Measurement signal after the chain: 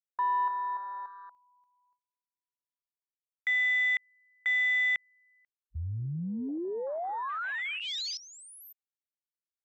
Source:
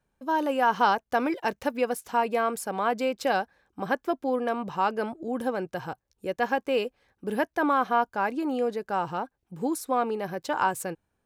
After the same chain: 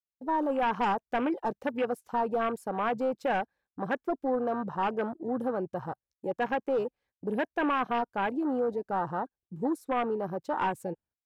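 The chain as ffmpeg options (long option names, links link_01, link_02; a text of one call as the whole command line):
ffmpeg -i in.wav -af "aeval=exprs='0.316*(cos(1*acos(clip(val(0)/0.316,-1,1)))-cos(1*PI/2))+0.0794*(cos(3*acos(clip(val(0)/0.316,-1,1)))-cos(3*PI/2))+0.126*(cos(5*acos(clip(val(0)/0.316,-1,1)))-cos(5*PI/2))+0.00355*(cos(8*acos(clip(val(0)/0.316,-1,1)))-cos(8*PI/2))':channel_layout=same,agate=range=-20dB:threshold=-52dB:ratio=16:detection=peak,afwtdn=0.0447,volume=-7dB" out.wav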